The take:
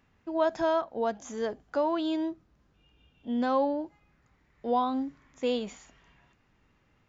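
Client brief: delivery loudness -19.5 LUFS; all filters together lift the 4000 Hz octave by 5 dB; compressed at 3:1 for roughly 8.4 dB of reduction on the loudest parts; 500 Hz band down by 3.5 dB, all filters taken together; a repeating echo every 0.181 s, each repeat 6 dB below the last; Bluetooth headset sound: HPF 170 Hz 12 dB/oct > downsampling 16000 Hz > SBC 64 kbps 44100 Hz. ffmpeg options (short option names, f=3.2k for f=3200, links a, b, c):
-af "equalizer=f=500:t=o:g=-4.5,equalizer=f=4k:t=o:g=6.5,acompressor=threshold=-35dB:ratio=3,highpass=170,aecho=1:1:181|362|543|724|905|1086:0.501|0.251|0.125|0.0626|0.0313|0.0157,aresample=16000,aresample=44100,volume=18.5dB" -ar 44100 -c:a sbc -b:a 64k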